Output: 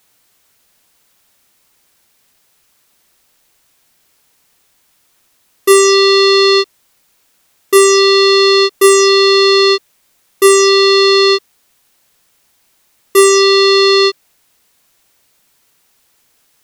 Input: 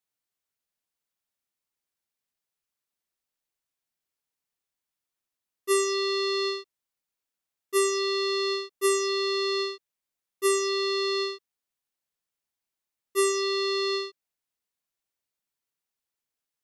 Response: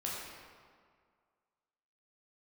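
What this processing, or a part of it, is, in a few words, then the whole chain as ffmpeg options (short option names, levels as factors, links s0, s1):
loud club master: -af "acompressor=threshold=0.0562:ratio=2.5,asoftclip=type=hard:threshold=0.0841,alimiter=level_in=37.6:limit=0.891:release=50:level=0:latency=1,volume=0.891"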